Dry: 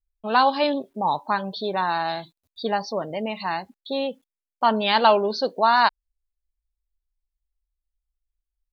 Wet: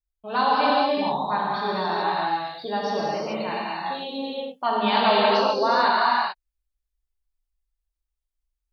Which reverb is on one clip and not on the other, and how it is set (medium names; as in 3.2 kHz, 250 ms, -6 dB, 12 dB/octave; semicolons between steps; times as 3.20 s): gated-style reverb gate 460 ms flat, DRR -7 dB; trim -7.5 dB